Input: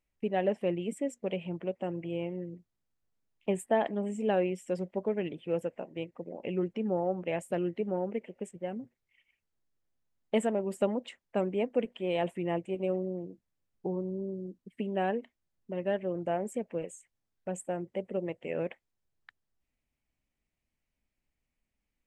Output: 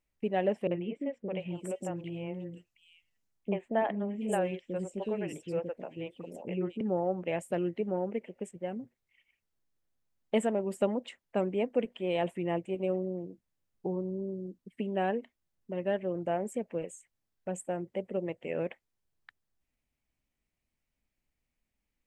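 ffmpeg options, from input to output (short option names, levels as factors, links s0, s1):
-filter_complex "[0:a]asettb=1/sr,asplit=3[s0][s1][s2];[s0]atrim=end=0.674[s3];[s1]atrim=start=0.67:end=6.81,asetpts=PTS-STARTPTS,afade=t=in:d=0.004:c=qsin,afade=t=out:st=6.136:d=0.004:c=qsin,acrossover=split=420|3400[s4][s5][s6];[s5]adelay=40[s7];[s6]adelay=730[s8];[s4][s7][s8]amix=inputs=3:normalize=0,atrim=end_sample=270774[s9];[s2]atrim=start=6.806[s10];[s3][s9]acrossfade=d=0.004:c1=hsin:c2=qsin[s11];[s11][s10]acrossfade=d=0.004:c1=qsin:c2=hsin"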